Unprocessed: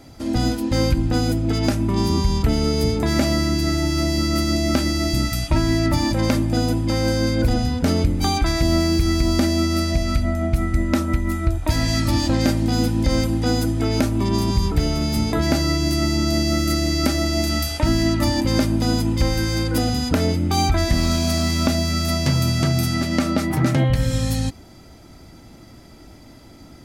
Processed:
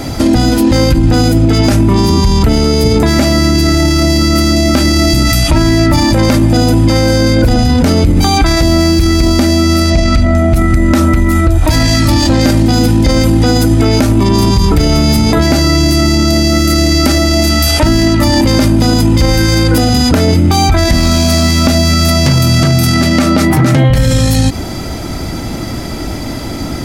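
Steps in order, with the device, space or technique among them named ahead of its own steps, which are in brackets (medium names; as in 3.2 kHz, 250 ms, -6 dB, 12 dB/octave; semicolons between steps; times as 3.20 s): 9.90–10.38 s: low-pass 7.3 kHz 12 dB/octave; loud club master (compression 2:1, threshold -21 dBFS, peak gain reduction 5.5 dB; hard clipper -14 dBFS, distortion -31 dB; loudness maximiser +25.5 dB); trim -1 dB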